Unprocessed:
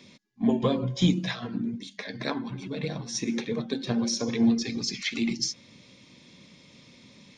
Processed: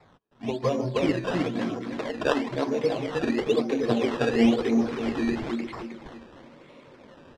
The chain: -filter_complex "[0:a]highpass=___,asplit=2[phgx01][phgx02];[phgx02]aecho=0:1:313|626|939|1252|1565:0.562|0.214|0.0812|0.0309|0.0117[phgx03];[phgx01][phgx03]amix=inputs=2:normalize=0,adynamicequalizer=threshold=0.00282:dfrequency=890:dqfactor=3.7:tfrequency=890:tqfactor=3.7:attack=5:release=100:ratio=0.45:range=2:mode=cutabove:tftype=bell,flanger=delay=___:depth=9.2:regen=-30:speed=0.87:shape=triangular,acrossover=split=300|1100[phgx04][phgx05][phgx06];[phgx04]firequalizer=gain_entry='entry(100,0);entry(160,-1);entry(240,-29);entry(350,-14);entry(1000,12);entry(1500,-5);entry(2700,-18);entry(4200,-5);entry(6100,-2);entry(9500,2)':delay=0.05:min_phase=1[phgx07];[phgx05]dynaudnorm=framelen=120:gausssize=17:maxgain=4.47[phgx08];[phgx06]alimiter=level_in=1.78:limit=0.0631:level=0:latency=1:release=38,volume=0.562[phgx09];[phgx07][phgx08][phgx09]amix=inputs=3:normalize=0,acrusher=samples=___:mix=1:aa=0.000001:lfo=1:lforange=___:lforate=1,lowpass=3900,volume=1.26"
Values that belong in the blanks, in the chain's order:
57, 1.7, 14, 14